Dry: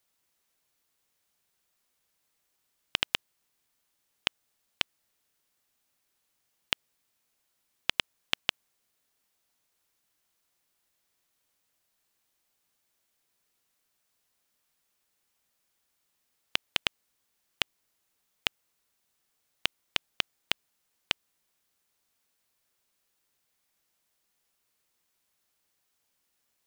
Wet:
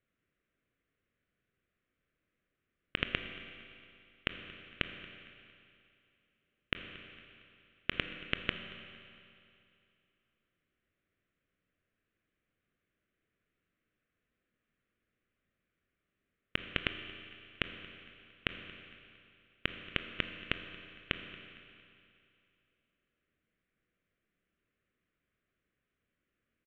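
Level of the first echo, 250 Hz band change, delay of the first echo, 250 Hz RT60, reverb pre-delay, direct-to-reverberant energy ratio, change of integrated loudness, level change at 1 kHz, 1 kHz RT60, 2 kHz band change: -21.0 dB, +5.5 dB, 229 ms, 2.6 s, 22 ms, 6.5 dB, -6.5 dB, -5.0 dB, 2.6 s, -2.0 dB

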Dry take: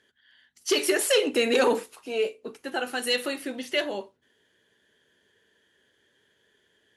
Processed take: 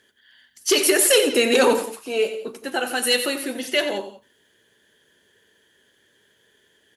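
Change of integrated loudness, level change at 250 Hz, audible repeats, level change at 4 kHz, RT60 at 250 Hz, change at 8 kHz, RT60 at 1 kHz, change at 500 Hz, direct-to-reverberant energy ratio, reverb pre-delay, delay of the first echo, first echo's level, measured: +6.0 dB, +5.0 dB, 2, +6.5 dB, no reverb, +10.0 dB, no reverb, +5.0 dB, no reverb, no reverb, 90 ms, -11.0 dB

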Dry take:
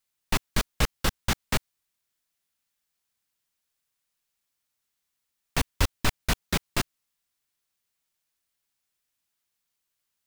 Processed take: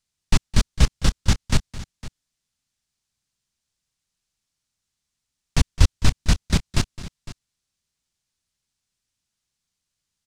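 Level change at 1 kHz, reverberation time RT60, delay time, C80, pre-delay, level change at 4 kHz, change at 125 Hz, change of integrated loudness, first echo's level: -1.0 dB, no reverb, 213 ms, no reverb, no reverb, +2.5 dB, +10.5 dB, +6.0 dB, -17.0 dB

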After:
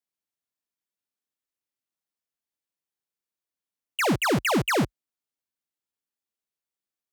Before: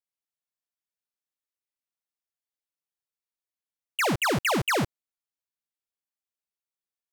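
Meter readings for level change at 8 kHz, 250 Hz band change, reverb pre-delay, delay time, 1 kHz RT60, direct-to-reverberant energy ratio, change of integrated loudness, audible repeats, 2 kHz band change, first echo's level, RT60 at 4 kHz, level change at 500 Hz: 0.0 dB, +4.0 dB, no reverb, no echo, no reverb, no reverb, +1.5 dB, no echo, 0.0 dB, no echo, no reverb, +2.0 dB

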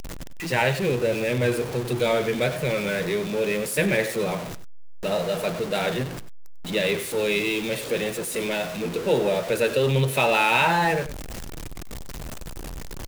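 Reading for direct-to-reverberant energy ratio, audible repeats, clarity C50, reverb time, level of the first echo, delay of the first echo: no reverb, 1, no reverb, no reverb, -15.0 dB, 97 ms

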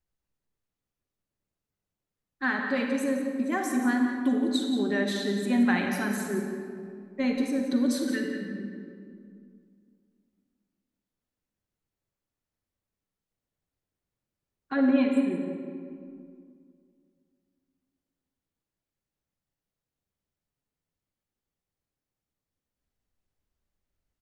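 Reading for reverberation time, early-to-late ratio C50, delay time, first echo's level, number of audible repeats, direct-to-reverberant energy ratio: 2.3 s, 2.5 dB, 177 ms, -11.0 dB, 1, 2.0 dB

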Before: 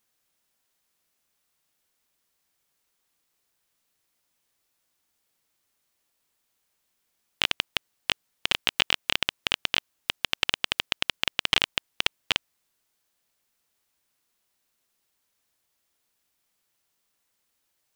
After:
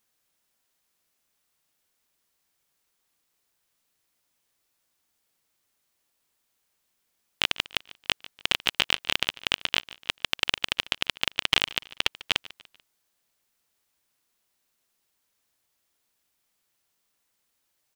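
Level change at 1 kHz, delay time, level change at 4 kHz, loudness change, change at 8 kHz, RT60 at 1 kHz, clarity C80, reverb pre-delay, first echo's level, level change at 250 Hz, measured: 0.0 dB, 146 ms, 0.0 dB, 0.0 dB, 0.0 dB, no reverb, no reverb, no reverb, -19.5 dB, 0.0 dB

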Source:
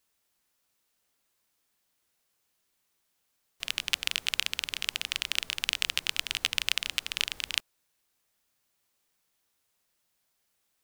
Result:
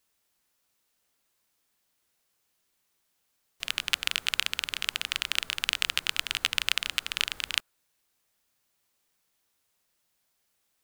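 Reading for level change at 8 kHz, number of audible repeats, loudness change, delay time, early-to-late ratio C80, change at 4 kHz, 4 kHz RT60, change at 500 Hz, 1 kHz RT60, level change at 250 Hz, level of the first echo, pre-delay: 0.0 dB, no echo, +1.5 dB, no echo, no reverb, +1.0 dB, no reverb, +1.5 dB, no reverb, +1.0 dB, no echo, no reverb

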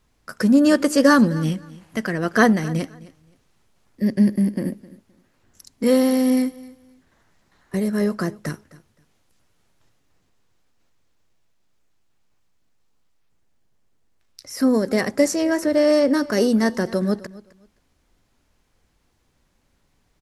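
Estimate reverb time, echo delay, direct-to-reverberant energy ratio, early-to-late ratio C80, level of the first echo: no reverb, 260 ms, no reverb, no reverb, -20.0 dB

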